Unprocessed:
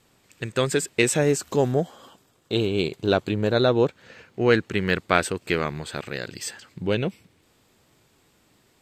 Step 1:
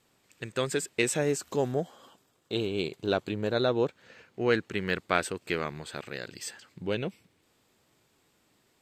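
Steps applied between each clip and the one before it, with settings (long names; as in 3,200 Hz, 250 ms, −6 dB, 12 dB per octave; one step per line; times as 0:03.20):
low-shelf EQ 130 Hz −6 dB
level −6 dB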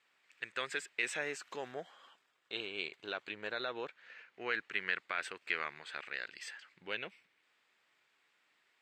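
brickwall limiter −17.5 dBFS, peak gain reduction 10 dB
resonant band-pass 2,000 Hz, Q 1.5
level +2 dB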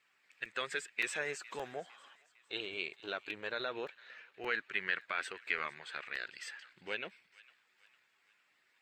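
spectral magnitudes quantised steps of 15 dB
delay with a high-pass on its return 455 ms, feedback 46%, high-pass 1,400 Hz, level −20 dB
regular buffer underruns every 0.57 s, samples 128, repeat, from 0:00.45
level +1 dB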